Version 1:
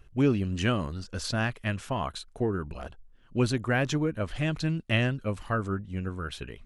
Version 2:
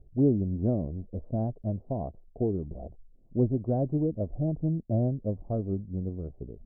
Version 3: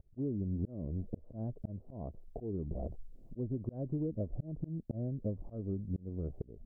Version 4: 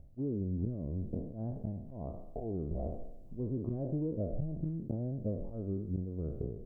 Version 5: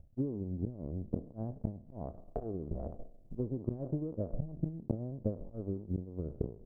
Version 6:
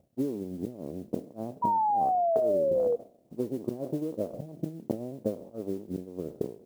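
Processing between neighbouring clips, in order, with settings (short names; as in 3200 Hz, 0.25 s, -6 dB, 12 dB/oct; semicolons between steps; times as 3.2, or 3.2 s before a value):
Wiener smoothing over 25 samples; elliptic low-pass 690 Hz, stop band 80 dB; gain +1 dB
dynamic EQ 740 Hz, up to -7 dB, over -50 dBFS, Q 3; auto swell 0.494 s; compressor 6:1, threshold -39 dBFS, peak gain reduction 13 dB; gain +6 dB
spectral trails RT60 0.82 s; short-mantissa float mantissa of 8-bit
transient shaper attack +10 dB, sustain -10 dB; gain -4 dB
HPF 260 Hz 12 dB/oct; modulation noise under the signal 27 dB; painted sound fall, 1.62–2.96, 470–970 Hz -33 dBFS; gain +7.5 dB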